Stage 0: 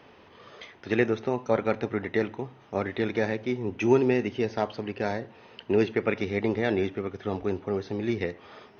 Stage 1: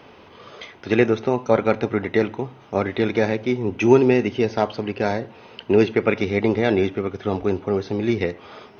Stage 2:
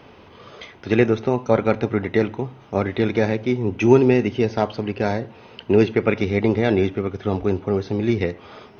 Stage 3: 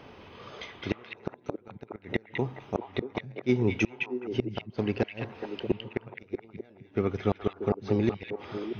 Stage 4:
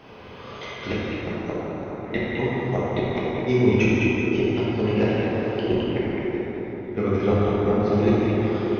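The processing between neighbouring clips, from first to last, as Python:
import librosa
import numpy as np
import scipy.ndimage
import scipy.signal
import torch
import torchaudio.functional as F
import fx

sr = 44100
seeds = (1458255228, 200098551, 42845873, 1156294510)

y1 = fx.notch(x, sr, hz=1800.0, q=12.0)
y1 = y1 * 10.0 ** (7.0 / 20.0)
y2 = fx.low_shelf(y1, sr, hz=170.0, db=7.0)
y2 = y2 * 10.0 ** (-1.0 / 20.0)
y3 = fx.gate_flip(y2, sr, shuts_db=-9.0, range_db=-35)
y3 = fx.echo_stepped(y3, sr, ms=211, hz=2600.0, octaves=-1.4, feedback_pct=70, wet_db=-0.5)
y3 = y3 * 10.0 ** (-3.0 / 20.0)
y4 = fx.rev_plate(y3, sr, seeds[0], rt60_s=3.7, hf_ratio=0.5, predelay_ms=0, drr_db=-8.5)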